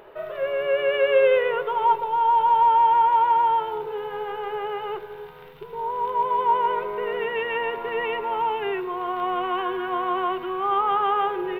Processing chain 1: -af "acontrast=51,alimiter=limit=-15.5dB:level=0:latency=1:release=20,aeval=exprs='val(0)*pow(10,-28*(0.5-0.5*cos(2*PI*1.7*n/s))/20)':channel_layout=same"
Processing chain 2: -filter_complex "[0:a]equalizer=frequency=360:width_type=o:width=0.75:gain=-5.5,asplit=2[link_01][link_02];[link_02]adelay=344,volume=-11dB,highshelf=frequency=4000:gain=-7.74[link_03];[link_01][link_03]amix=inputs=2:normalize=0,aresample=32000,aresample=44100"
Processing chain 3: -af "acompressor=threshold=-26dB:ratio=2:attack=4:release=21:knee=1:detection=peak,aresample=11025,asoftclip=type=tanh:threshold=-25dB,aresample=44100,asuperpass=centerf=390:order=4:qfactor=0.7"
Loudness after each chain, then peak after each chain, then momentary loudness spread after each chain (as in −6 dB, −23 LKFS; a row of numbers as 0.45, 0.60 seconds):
−28.0, −23.0, −33.5 LKFS; −15.5, −10.0, −24.0 dBFS; 13, 13, 6 LU